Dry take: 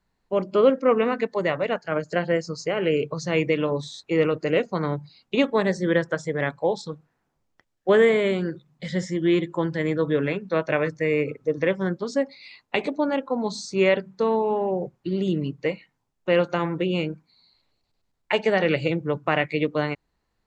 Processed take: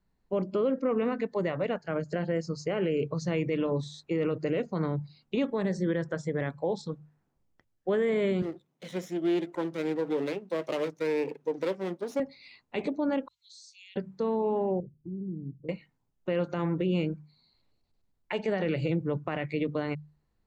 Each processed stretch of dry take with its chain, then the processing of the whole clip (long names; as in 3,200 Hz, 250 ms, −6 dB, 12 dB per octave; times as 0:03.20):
0:08.42–0:12.20: lower of the sound and its delayed copy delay 0.32 ms + Chebyshev high-pass filter 390 Hz
0:13.28–0:13.96: Butterworth high-pass 2,900 Hz + downward compressor 2.5 to 1, threshold −45 dBFS
0:14.80–0:15.69: Gaussian smoothing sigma 24 samples + downward compressor 1.5 to 1, threshold −48 dBFS
whole clip: low-shelf EQ 410 Hz +9.5 dB; mains-hum notches 50/100/150 Hz; brickwall limiter −12.5 dBFS; level −7.5 dB